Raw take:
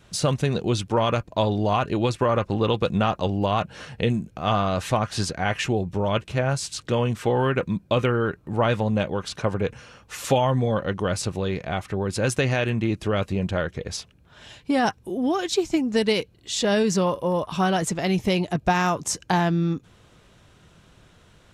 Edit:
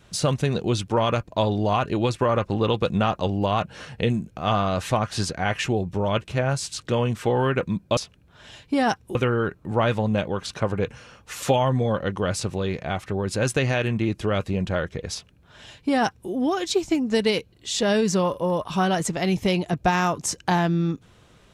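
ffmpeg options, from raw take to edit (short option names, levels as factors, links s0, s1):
-filter_complex "[0:a]asplit=3[s0][s1][s2];[s0]atrim=end=7.972[s3];[s1]atrim=start=13.938:end=15.122[s4];[s2]atrim=start=7.968[s5];[s3][s4]acrossfade=d=0.004:c1=hsin:c2=hsin[s6];[s6][s5]acrossfade=d=0.004:c1=hsin:c2=hsin"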